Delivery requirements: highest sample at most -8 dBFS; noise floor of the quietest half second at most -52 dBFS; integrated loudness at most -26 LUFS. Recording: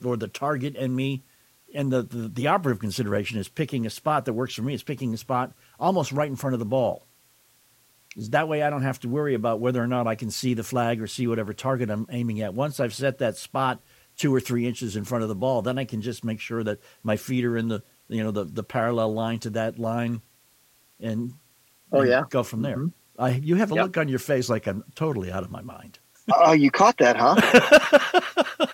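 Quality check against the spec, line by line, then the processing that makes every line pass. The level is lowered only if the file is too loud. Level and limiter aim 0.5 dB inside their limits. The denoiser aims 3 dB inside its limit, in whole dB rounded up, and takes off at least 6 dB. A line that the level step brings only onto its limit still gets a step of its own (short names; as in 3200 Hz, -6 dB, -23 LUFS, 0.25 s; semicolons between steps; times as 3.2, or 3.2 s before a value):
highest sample -3.5 dBFS: fail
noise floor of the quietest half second -61 dBFS: OK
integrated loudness -24.0 LUFS: fail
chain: gain -2.5 dB; limiter -8.5 dBFS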